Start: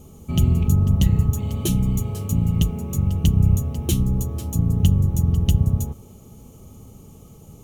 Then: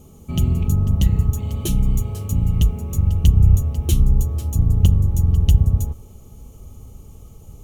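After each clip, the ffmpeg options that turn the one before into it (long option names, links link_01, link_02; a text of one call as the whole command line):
ffmpeg -i in.wav -af "asubboost=boost=5.5:cutoff=73,volume=-1dB" out.wav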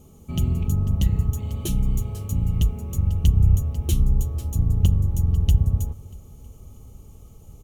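ffmpeg -i in.wav -af "aecho=1:1:319|638|957|1276:0.0708|0.0382|0.0206|0.0111,volume=-4dB" out.wav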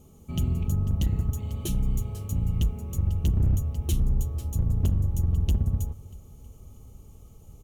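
ffmpeg -i in.wav -af "asoftclip=type=hard:threshold=-14.5dB,volume=-3.5dB" out.wav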